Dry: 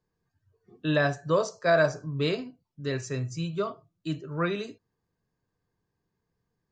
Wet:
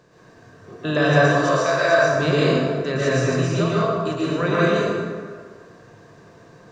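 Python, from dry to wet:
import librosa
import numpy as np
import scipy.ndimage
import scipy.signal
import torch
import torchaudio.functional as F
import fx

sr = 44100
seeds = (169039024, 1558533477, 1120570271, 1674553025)

y = fx.bin_compress(x, sr, power=0.6)
y = fx.highpass(y, sr, hz=970.0, slope=6, at=(1.25, 1.98))
y = fx.rev_plate(y, sr, seeds[0], rt60_s=1.8, hf_ratio=0.55, predelay_ms=105, drr_db=-7.5)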